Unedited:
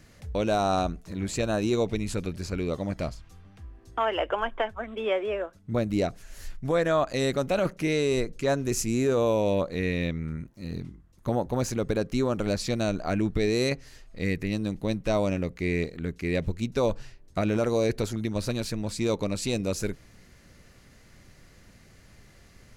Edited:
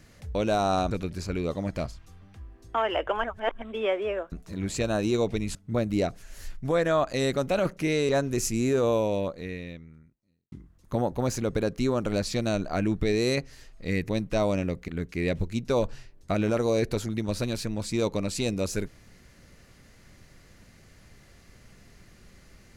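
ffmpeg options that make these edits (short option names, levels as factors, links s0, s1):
-filter_complex "[0:a]asplit=10[s0][s1][s2][s3][s4][s5][s6][s7][s8][s9];[s0]atrim=end=0.912[s10];[s1]atrim=start=2.138:end=4.472[s11];[s2]atrim=start=4.468:end=4.852,asetpts=PTS-STARTPTS,areverse[s12];[s3]atrim=start=4.848:end=5.552[s13];[s4]atrim=start=0.908:end=2.142[s14];[s5]atrim=start=5.548:end=8.092[s15];[s6]atrim=start=8.428:end=10.86,asetpts=PTS-STARTPTS,afade=t=out:st=0.822:d=1.61:c=qua[s16];[s7]atrim=start=10.86:end=14.432,asetpts=PTS-STARTPTS,afade=t=in:d=0.004:c=hsin[s17];[s8]atrim=start=14.828:end=15.622[s18];[s9]atrim=start=15.948[s19];[s10][s11]acrossfade=d=0.004:c1=hsin:c2=hsin[s20];[s20][s12]acrossfade=d=0.004:c1=hsin:c2=hsin[s21];[s21][s13]acrossfade=d=0.004:c1=hsin:c2=hsin[s22];[s22][s14]acrossfade=d=0.004:c1=hsin:c2=hsin[s23];[s23][s15]acrossfade=d=0.004:c1=hsin:c2=hsin[s24];[s16][s17]concat=n=2:v=0:a=1[s25];[s24][s25]acrossfade=d=0.004:c1=hsin:c2=hsin[s26];[s26][s18]acrossfade=d=0.004:c1=hsin:c2=hsin[s27];[s27][s19]acrossfade=d=0.004:c1=hsin:c2=hsin"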